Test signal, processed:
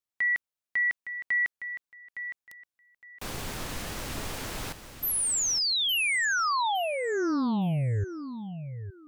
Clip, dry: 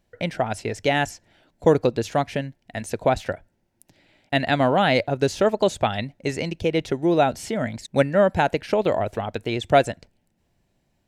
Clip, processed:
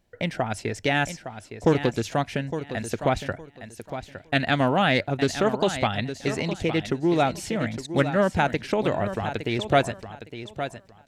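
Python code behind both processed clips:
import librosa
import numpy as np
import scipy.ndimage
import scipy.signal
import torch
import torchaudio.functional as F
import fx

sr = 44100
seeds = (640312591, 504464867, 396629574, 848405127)

p1 = fx.dynamic_eq(x, sr, hz=550.0, q=1.5, threshold_db=-31.0, ratio=4.0, max_db=-6)
p2 = p1 + fx.echo_feedback(p1, sr, ms=862, feedback_pct=21, wet_db=-10.5, dry=0)
y = fx.doppler_dist(p2, sr, depth_ms=0.15)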